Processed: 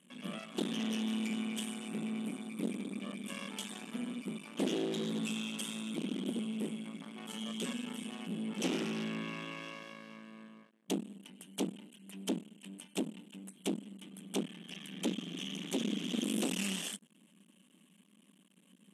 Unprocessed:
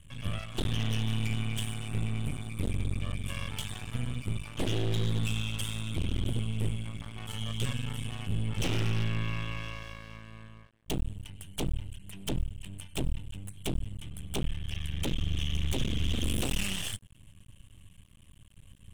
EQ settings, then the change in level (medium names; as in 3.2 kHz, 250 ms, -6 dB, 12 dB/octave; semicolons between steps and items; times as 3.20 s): dynamic bell 7 kHz, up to +4 dB, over -52 dBFS, Q 1.3; brick-wall FIR band-pass 180–13000 Hz; bass shelf 420 Hz +11 dB; -5.0 dB